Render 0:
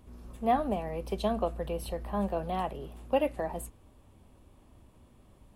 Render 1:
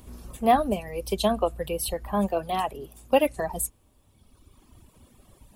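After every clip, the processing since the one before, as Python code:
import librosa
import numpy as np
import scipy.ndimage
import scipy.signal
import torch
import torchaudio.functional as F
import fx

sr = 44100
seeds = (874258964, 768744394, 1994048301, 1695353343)

y = fx.high_shelf(x, sr, hz=3900.0, db=11.0)
y = fx.dereverb_blind(y, sr, rt60_s=1.9)
y = y * librosa.db_to_amplitude(6.5)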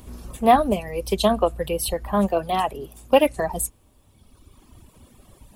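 y = fx.doppler_dist(x, sr, depth_ms=0.1)
y = y * librosa.db_to_amplitude(4.5)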